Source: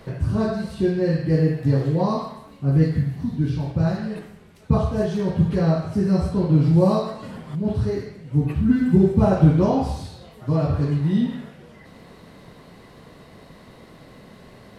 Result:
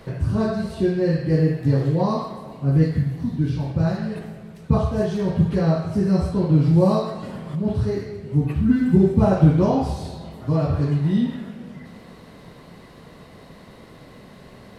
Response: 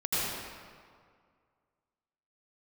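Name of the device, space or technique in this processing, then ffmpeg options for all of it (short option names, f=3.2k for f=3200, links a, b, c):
ducked reverb: -filter_complex "[0:a]asplit=3[a][b][c];[1:a]atrim=start_sample=2205[d];[b][d]afir=irnorm=-1:irlink=0[e];[c]apad=whole_len=652234[f];[e][f]sidechaincompress=threshold=-23dB:ratio=8:attack=16:release=834,volume=-19.5dB[g];[a][g]amix=inputs=2:normalize=0"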